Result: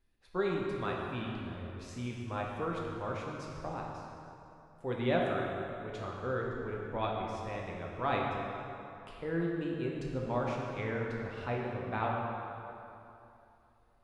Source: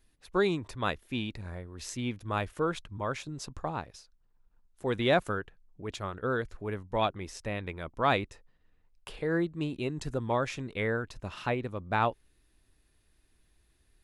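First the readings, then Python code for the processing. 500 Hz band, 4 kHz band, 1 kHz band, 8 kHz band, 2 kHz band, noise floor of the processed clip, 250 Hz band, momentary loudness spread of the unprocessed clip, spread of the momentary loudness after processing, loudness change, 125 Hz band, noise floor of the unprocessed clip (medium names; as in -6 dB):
-3.0 dB, -8.0 dB, -3.0 dB, under -10 dB, -5.0 dB, -63 dBFS, -2.5 dB, 12 LU, 12 LU, -4.0 dB, -2.5 dB, -69 dBFS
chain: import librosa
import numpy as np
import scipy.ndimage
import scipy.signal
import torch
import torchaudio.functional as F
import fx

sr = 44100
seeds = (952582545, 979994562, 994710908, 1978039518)

y = fx.lowpass(x, sr, hz=2700.0, slope=6)
y = fx.rev_plate(y, sr, seeds[0], rt60_s=2.9, hf_ratio=0.7, predelay_ms=0, drr_db=-2.5)
y = y * librosa.db_to_amplitude(-7.5)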